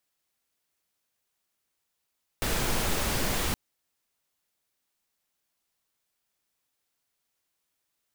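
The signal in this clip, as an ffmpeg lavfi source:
ffmpeg -f lavfi -i "anoisesrc=color=pink:amplitude=0.216:duration=1.12:sample_rate=44100:seed=1" out.wav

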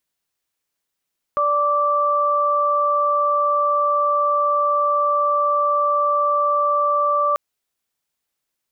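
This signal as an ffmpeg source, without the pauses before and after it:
ffmpeg -f lavfi -i "aevalsrc='0.0841*sin(2*PI*584*t)+0.15*sin(2*PI*1168*t)':duration=5.99:sample_rate=44100" out.wav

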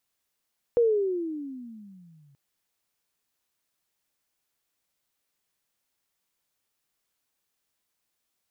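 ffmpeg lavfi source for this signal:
ffmpeg -f lavfi -i "aevalsrc='pow(10,(-16.5-39*t/1.58)/20)*sin(2*PI*485*1.58/(-22*log(2)/12)*(exp(-22*log(2)/12*t/1.58)-1))':duration=1.58:sample_rate=44100" out.wav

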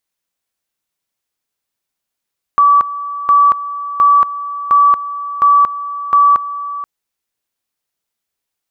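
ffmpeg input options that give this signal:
ffmpeg -f lavfi -i "aevalsrc='pow(10,(-5.5-14.5*gte(mod(t,0.71),0.23))/20)*sin(2*PI*1150*t)':duration=4.26:sample_rate=44100" out.wav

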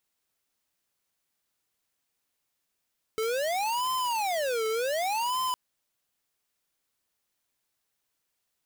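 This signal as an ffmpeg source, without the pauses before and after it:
ffmpeg -f lavfi -i "aevalsrc='0.0376*(2*lt(mod((734*t-296/(2*PI*0.67)*sin(2*PI*0.67*t)),1),0.5)-1)':duration=2.36:sample_rate=44100" out.wav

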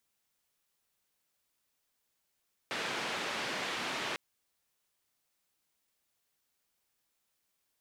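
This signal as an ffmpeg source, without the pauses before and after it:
ffmpeg -f lavfi -i "anoisesrc=color=white:duration=1.45:sample_rate=44100:seed=1,highpass=frequency=180,lowpass=frequency=2900,volume=-23dB" out.wav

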